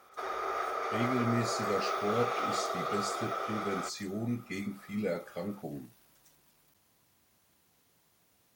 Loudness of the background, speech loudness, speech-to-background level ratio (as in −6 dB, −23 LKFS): −34.5 LKFS, −36.5 LKFS, −2.0 dB